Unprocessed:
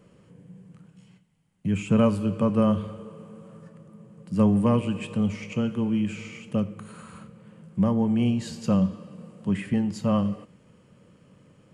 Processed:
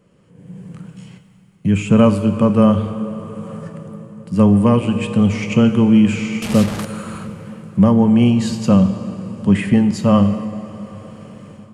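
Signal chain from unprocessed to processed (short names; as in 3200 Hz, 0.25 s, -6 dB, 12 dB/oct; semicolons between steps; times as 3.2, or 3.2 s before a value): 6.42–6.85 delta modulation 64 kbps, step -30.5 dBFS; AGC gain up to 16.5 dB; plate-style reverb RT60 4.5 s, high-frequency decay 0.65×, DRR 11.5 dB; gain -1 dB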